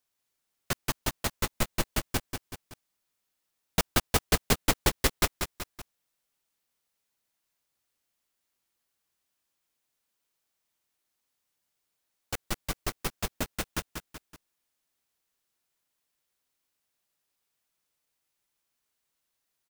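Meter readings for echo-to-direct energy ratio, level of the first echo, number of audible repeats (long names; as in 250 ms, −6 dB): −6.0 dB, −7.0 dB, 3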